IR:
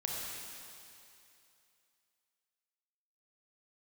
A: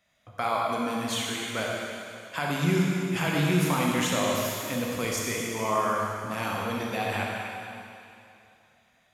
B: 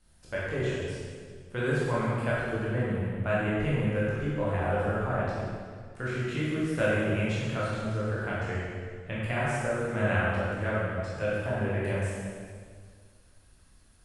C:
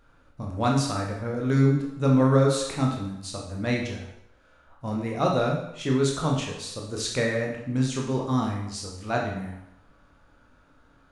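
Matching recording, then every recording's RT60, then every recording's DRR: A; 2.7, 1.9, 0.80 seconds; −3.0, −8.5, −1.5 decibels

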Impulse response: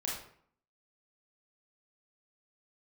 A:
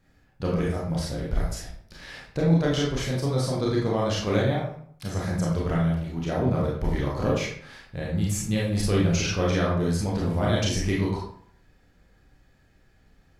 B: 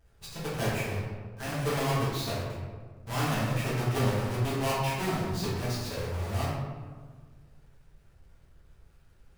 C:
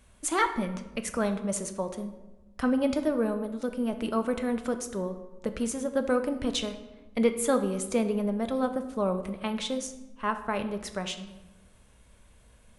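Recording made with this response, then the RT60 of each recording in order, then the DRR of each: A; 0.60, 1.5, 1.1 seconds; −4.5, −9.5, 7.5 decibels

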